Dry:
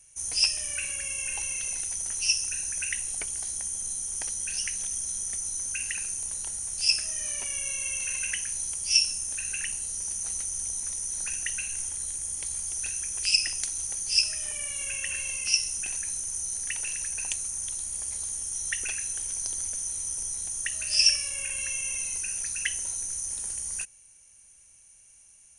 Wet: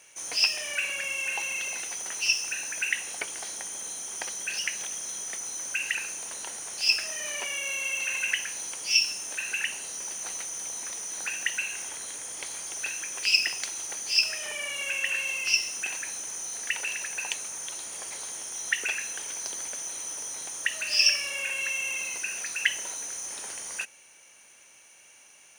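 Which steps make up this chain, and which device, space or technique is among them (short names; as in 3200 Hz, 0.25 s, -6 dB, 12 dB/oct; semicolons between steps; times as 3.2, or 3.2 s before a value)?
phone line with mismatched companding (BPF 380–3600 Hz; G.711 law mismatch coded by mu); gain +6 dB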